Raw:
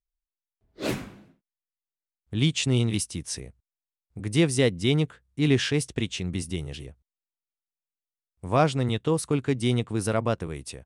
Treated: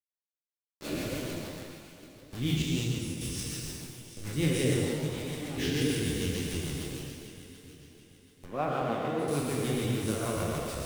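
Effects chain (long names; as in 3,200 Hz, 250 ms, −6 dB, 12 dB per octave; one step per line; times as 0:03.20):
peak hold with a decay on every bin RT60 2.84 s
bit reduction 5 bits
0:02.62–0:03.21: downward expander −15 dBFS
0:08.45–0:09.28: three-way crossover with the lows and the highs turned down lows −23 dB, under 160 Hz, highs −17 dB, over 2,800 Hz
rotating-speaker cabinet horn 6.7 Hz
low-shelf EQ 120 Hz +8.5 dB
0:04.74–0:05.58: tube saturation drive 25 dB, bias 0.55
reverb whose tail is shaped and stops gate 280 ms flat, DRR 0.5 dB
flanger 1.7 Hz, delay 6.4 ms, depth 8.1 ms, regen +42%
delay that swaps between a low-pass and a high-pass 367 ms, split 1,000 Hz, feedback 60%, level −9 dB
level −7.5 dB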